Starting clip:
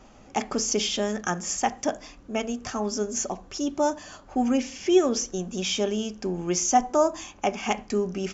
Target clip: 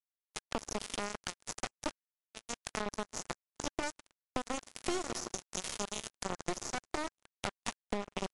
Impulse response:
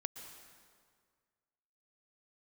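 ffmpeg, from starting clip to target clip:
-filter_complex "[0:a]asplit=3[s0][s1][s2];[s0]afade=t=out:st=3.87:d=0.02[s3];[s1]bass=f=250:g=-7,treble=f=4000:g=11,afade=t=in:st=3.87:d=0.02,afade=t=out:st=6.54:d=0.02[s4];[s2]afade=t=in:st=6.54:d=0.02[s5];[s3][s4][s5]amix=inputs=3:normalize=0,alimiter=limit=0.106:level=0:latency=1:release=138,asplit=2[s6][s7];[s7]adelay=392,lowpass=f=3800:p=1,volume=0.224,asplit=2[s8][s9];[s9]adelay=392,lowpass=f=3800:p=1,volume=0.35,asplit=2[s10][s11];[s11]adelay=392,lowpass=f=3800:p=1,volume=0.35[s12];[s6][s8][s10][s12]amix=inputs=4:normalize=0,adynamicequalizer=threshold=0.00501:dfrequency=350:dqfactor=6.5:tfrequency=350:tqfactor=6.5:attack=5:release=100:ratio=0.375:range=2.5:mode=boostabove:tftype=bell,aeval=exprs='0.178*(cos(1*acos(clip(val(0)/0.178,-1,1)))-cos(1*PI/2))+0.0501*(cos(6*acos(clip(val(0)/0.178,-1,1)))-cos(6*PI/2))+0.02*(cos(7*acos(clip(val(0)/0.178,-1,1)))-cos(7*PI/2))+0.0355*(cos(8*acos(clip(val(0)/0.178,-1,1)))-cos(8*PI/2))':c=same[s13];[1:a]atrim=start_sample=2205[s14];[s13][s14]afir=irnorm=-1:irlink=0,acrusher=bits=3:mix=0:aa=0.5,bandreject=f=1600:w=15,acompressor=threshold=0.0282:ratio=8,volume=1.12" -ar 24000 -c:a libmp3lame -b:a 128k

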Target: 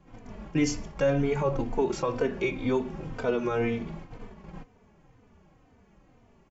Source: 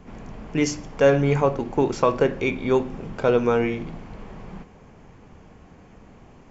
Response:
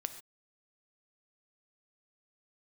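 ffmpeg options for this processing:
-filter_complex "[0:a]agate=range=0.398:threshold=0.0141:ratio=16:detection=peak,asettb=1/sr,asplit=3[s0][s1][s2];[s0]atrim=end=0.614[s3];[s1]atrim=start=0.61:end=1.79,asetpts=PTS-STARTPTS,afade=t=in:d=0.004:c=qsin,afade=t=out:st=1.176:d=0.004:c=qsin,lowshelf=f=61:g=10.5[s4];[s2]atrim=start=1.786[s5];[s3][s4]acrossfade=d=0.004:c1=hsin:c2=qsin[s6];[s6][s5]acrossfade=d=0.004:c1=qsin:c2=hsin,alimiter=limit=0.2:level=0:latency=1:release=103,asplit=2[s7][s8];[s8]adelay=3.2,afreqshift=-2[s9];[s7][s9]amix=inputs=2:normalize=1"

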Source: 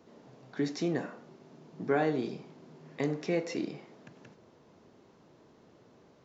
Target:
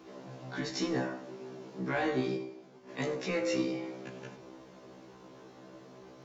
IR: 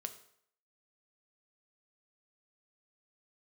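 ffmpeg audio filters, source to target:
-filter_complex "[0:a]asplit=2[s0][s1];[s1]acompressor=threshold=0.00631:ratio=8,volume=0.944[s2];[s0][s2]amix=inputs=2:normalize=0,equalizer=f=93:w=0.6:g=-5.5,asettb=1/sr,asplit=3[s3][s4][s5];[s3]atrim=end=2.374[s6];[s4]atrim=start=2.37:end=2.89,asetpts=PTS-STARTPTS,afade=t=in:d=0.004:c=qsin,afade=t=out:st=0.516:d=0.004:c=qsin,agate=range=0.0224:threshold=0.00891:ratio=3:detection=peak[s7];[s5]atrim=start=2.886[s8];[s6][s7]acrossfade=d=0.004:c1=hsin:c2=qsin[s9];[s9][s8]acrossfade=d=0.004:c1=qsin:c2=hsin[s10];[1:a]atrim=start_sample=2205,asetrate=36162,aresample=44100[s11];[s10][s11]afir=irnorm=-1:irlink=0,acrossover=split=270|1300[s12][s13][s14];[s13]asoftclip=type=tanh:threshold=0.0178[s15];[s12][s15][s14]amix=inputs=3:normalize=0,afftfilt=real='re*1.73*eq(mod(b,3),0)':imag='im*1.73*eq(mod(b,3),0)':win_size=2048:overlap=0.75,volume=2.11"

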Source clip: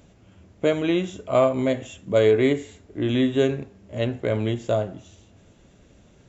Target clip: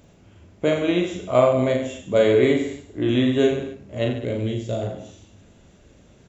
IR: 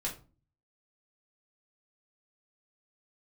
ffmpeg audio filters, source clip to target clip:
-filter_complex "[0:a]asettb=1/sr,asplit=3[s0][s1][s2];[s0]atrim=end=4.124[s3];[s1]atrim=start=4.12:end=4.82,asetpts=PTS-STARTPTS,afade=t=in:d=0.004:c=qsin,afade=t=out:st=0.696:d=0.004:c=qsin,equalizer=f=1100:t=o:w=1.8:g=-13.5[s4];[s2]atrim=start=4.816[s5];[s3][s4]acrossfade=d=0.004:c1=hsin:c2=qsin[s6];[s6][s5]acrossfade=d=0.004:c1=qsin:c2=hsin,asplit=2[s7][s8];[s8]aecho=0:1:40|86|138.9|199.7|269.7:0.631|0.398|0.251|0.158|0.1[s9];[s7][s9]amix=inputs=2:normalize=0"

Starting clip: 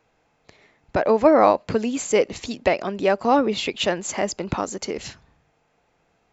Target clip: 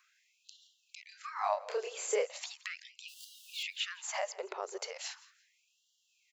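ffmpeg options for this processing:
-filter_complex "[0:a]asettb=1/sr,asplit=3[s0][s1][s2];[s0]atrim=end=3.084[s3];[s1]atrim=start=3.08:end=3.63,asetpts=PTS-STARTPTS,afade=t=in:d=0.004:c=qsin,afade=t=out:st=0.546:d=0.004:c=qsin,aeval=exprs='val(0)+0.5*0.0422*sgn(val(0))':c=same[s4];[s2]atrim=start=3.626[s5];[s3][s4]acrossfade=d=0.004:c1=hsin:c2=qsin[s6];[s6][s5]acrossfade=d=0.004:c1=qsin:c2=hsin,asettb=1/sr,asplit=3[s7][s8][s9];[s7]atrim=end=4.344[s10];[s8]atrim=start=4.34:end=4.76,asetpts=PTS-STARTPTS,afade=t=in:d=0.004:c=qsin,afade=t=out:st=0.416:d=0.004:c=qsin,aemphasis=mode=reproduction:type=75fm[s11];[s9]atrim=start=4.756[s12];[s10][s11]acrossfade=d=0.004:c1=hsin:c2=qsin[s13];[s13][s12]acrossfade=d=0.004:c1=qsin:c2=hsin,acrossover=split=3100[s14][s15];[s15]acompressor=threshold=0.0158:ratio=4:attack=1:release=60[s16];[s14][s16]amix=inputs=2:normalize=0,bass=f=250:g=10,treble=f=4000:g=5,acompressor=threshold=0.0224:ratio=3,asplit=3[s17][s18][s19];[s17]afade=t=out:st=1.11:d=0.02[s20];[s18]asplit=2[s21][s22];[s22]adelay=29,volume=0.794[s23];[s21][s23]amix=inputs=2:normalize=0,afade=t=in:st=1.11:d=0.02,afade=t=out:st=2.28:d=0.02[s24];[s19]afade=t=in:st=2.28:d=0.02[s25];[s20][s24][s25]amix=inputs=3:normalize=0,aecho=1:1:171|342:0.1|0.027,afftfilt=real='re*gte(b*sr/1024,350*pow(2800/350,0.5+0.5*sin(2*PI*0.38*pts/sr)))':imag='im*gte(b*sr/1024,350*pow(2800/350,0.5+0.5*sin(2*PI*0.38*pts/sr)))':win_size=1024:overlap=0.75"

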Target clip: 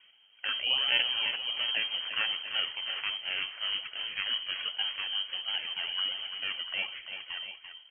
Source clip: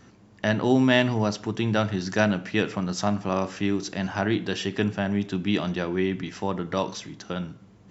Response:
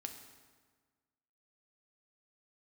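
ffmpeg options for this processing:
-af "aecho=1:1:2.2:0.33,acrusher=samples=16:mix=1:aa=0.000001:lfo=1:lforange=9.6:lforate=1.3,aecho=1:1:72|340|688:0.133|0.355|0.266,lowpass=f=2800:t=q:w=0.5098,lowpass=f=2800:t=q:w=0.6013,lowpass=f=2800:t=q:w=0.9,lowpass=f=2800:t=q:w=2.563,afreqshift=-3300,volume=0.398"

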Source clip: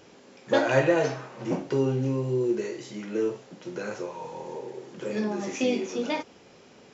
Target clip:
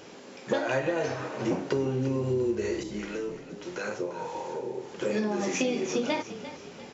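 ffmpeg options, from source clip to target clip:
-filter_complex "[0:a]lowshelf=f=96:g=-8,acompressor=threshold=0.0316:ratio=12,asettb=1/sr,asplit=3[s0][s1][s2];[s0]atrim=end=2.834[s3];[s1]atrim=start=2.83:end=5.01,asetpts=PTS-STARTPTS,afade=t=in:d=0.004:c=qsin,afade=t=out:st=2.176:d=0.004:c=qsin,acrossover=split=590[s4][s5];[s4]aeval=exprs='val(0)*(1-0.7/2+0.7/2*cos(2*PI*1.6*n/s))':c=same[s6];[s5]aeval=exprs='val(0)*(1-0.7/2-0.7/2*cos(2*PI*1.6*n/s))':c=same[s7];[s6][s7]amix=inputs=2:normalize=0[s8];[s2]atrim=start=5.006[s9];[s3][s8]acrossfade=d=0.004:c1=hsin:c2=qsin[s10];[s10][s9]acrossfade=d=0.004:c1=qsin:c2=hsin,asplit=5[s11][s12][s13][s14][s15];[s12]adelay=347,afreqshift=-33,volume=0.224[s16];[s13]adelay=694,afreqshift=-66,volume=0.0944[s17];[s14]adelay=1041,afreqshift=-99,volume=0.0394[s18];[s15]adelay=1388,afreqshift=-132,volume=0.0166[s19];[s11][s16][s17][s18][s19]amix=inputs=5:normalize=0,volume=2"

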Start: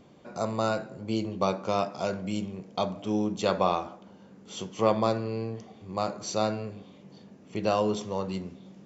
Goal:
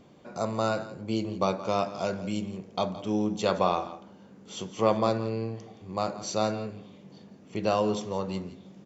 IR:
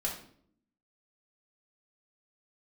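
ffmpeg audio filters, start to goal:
-af "aecho=1:1:170:0.158"

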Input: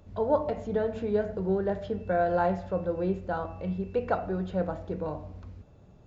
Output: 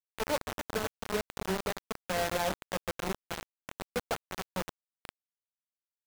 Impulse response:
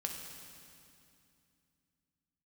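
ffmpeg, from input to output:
-filter_complex "[0:a]asettb=1/sr,asplit=3[s0][s1][s2];[s0]atrim=end=4.424[s3];[s1]atrim=start=4.42:end=5.05,asetpts=PTS-STARTPTS,afade=t=in:d=0.004:c=qsin,afade=t=out:st=0.626:d=0.004:c=qsin,equalizer=f=430:t=o:w=1.4:g=-3.5[s4];[s2]atrim=start=5.046[s5];[s3][s4]acrossfade=d=0.004:c1=hsin:c2=qsin[s6];[s6][s5]acrossfade=d=0.004:c1=qsin:c2=hsin,asplit=2[s7][s8];[s8]adelay=261,lowpass=f=1400:p=1,volume=0.355,asplit=2[s9][s10];[s10]adelay=261,lowpass=f=1400:p=1,volume=0.38,asplit=2[s11][s12];[s12]adelay=261,lowpass=f=1400:p=1,volume=0.38,asplit=2[s13][s14];[s14]adelay=261,lowpass=f=1400:p=1,volume=0.38[s15];[s9][s11][s13][s15]amix=inputs=4:normalize=0[s16];[s7][s16]amix=inputs=2:normalize=0,acrusher=bits=3:mix=0:aa=0.000001,volume=0.422"

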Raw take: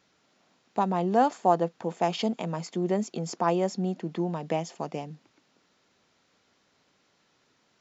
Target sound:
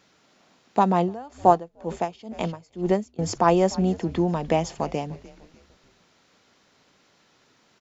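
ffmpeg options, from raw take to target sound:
-filter_complex "[0:a]asplit=4[s0][s1][s2][s3];[s1]adelay=298,afreqshift=-110,volume=0.112[s4];[s2]adelay=596,afreqshift=-220,volume=0.0473[s5];[s3]adelay=894,afreqshift=-330,volume=0.0197[s6];[s0][s4][s5][s6]amix=inputs=4:normalize=0,asettb=1/sr,asplit=3[s7][s8][s9];[s7]atrim=end=1.004[s10];[s8]atrim=start=1:end=3.19,asetpts=PTS-STARTPTS,afade=t=in:d=0.004:c=qsin,afade=t=out:st=2.186:d=0.004:c=qsin,aeval=exprs='val(0)*pow(10,-25*(0.5-0.5*cos(2*PI*2.1*n/s))/20)':c=same[s11];[s9]atrim=start=3.186[s12];[s10][s11]acrossfade=d=0.004:c1=hsin:c2=qsin[s13];[s13][s12]acrossfade=d=0.004:c1=qsin:c2=hsin,volume=2.11"

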